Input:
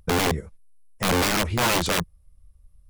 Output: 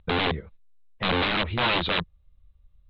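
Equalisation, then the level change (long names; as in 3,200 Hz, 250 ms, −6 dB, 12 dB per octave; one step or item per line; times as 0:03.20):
Chebyshev low-pass filter 3,900 Hz, order 6
high-shelf EQ 2,600 Hz +9 dB
−3.0 dB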